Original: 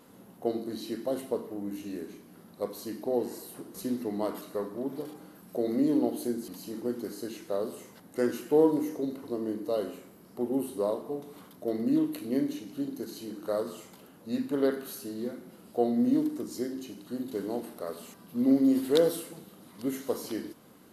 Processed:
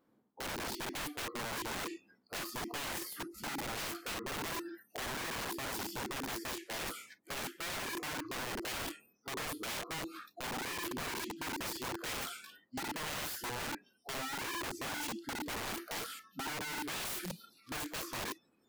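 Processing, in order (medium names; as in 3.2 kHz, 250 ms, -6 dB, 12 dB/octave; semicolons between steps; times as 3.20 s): treble shelf 3.5 kHz -12 dB; band-stop 530 Hz, Q 12; in parallel at -2 dB: peak limiter -24.5 dBFS, peak gain reduction 11 dB; on the sum: spectral noise reduction 29 dB; reverse; compression 6:1, threshold -39 dBFS, peak gain reduction 20.5 dB; reverse; tape speed +12%; integer overflow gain 41.5 dB; trim +7 dB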